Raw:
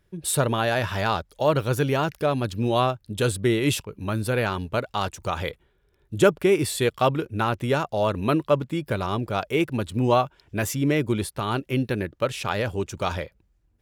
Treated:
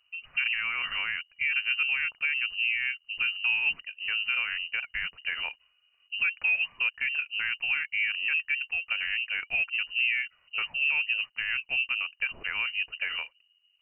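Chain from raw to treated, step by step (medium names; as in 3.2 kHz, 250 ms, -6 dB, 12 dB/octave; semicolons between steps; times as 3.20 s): peak limiter -14.5 dBFS, peak gain reduction 7.5 dB; low-pass that closes with the level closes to 1.5 kHz, closed at -20.5 dBFS; frequency inversion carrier 2.9 kHz; peaking EQ 300 Hz -12.5 dB 2.2 oct; trim -3.5 dB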